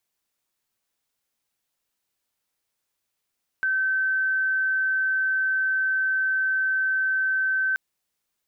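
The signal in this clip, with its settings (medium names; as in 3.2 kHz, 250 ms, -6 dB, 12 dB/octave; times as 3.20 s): tone sine 1.54 kHz -20.5 dBFS 4.13 s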